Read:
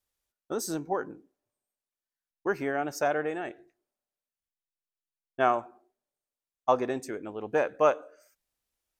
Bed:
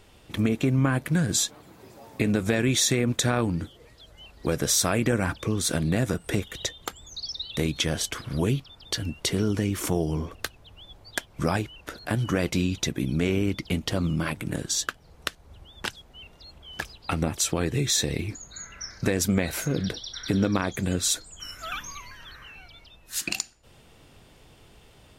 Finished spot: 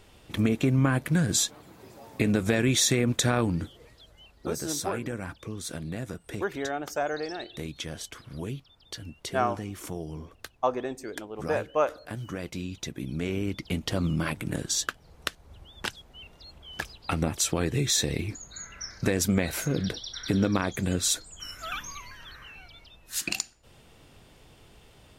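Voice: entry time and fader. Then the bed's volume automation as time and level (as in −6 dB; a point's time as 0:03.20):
3.95 s, −2.0 dB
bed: 0:03.83 −0.5 dB
0:04.60 −10.5 dB
0:12.56 −10.5 dB
0:14.05 −1 dB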